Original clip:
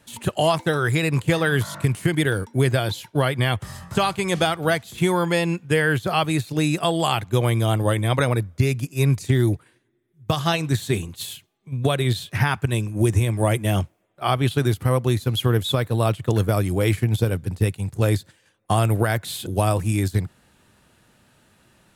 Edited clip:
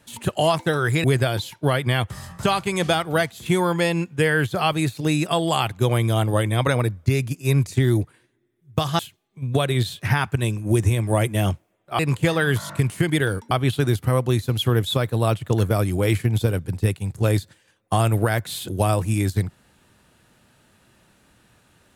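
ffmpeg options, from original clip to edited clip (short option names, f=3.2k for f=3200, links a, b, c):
-filter_complex "[0:a]asplit=5[a][b][c][d][e];[a]atrim=end=1.042[f];[b]atrim=start=2.558:end=10.512[g];[c]atrim=start=11.288:end=14.292[h];[d]atrim=start=1.038:end=2.562[i];[e]atrim=start=14.288[j];[f][g]acrossfade=d=0.004:c1=hsin:c2=hsin[k];[k][h]acrossfade=d=0.004:c1=hsin:c2=hsin[l];[l][i]acrossfade=d=0.004:c1=hsin:c2=hsin[m];[m][j]acrossfade=d=0.004:c1=hsin:c2=hsin"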